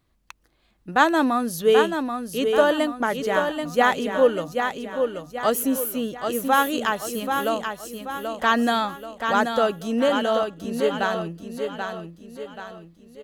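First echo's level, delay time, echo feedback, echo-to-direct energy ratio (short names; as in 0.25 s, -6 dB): -6.0 dB, 0.783 s, 44%, -5.0 dB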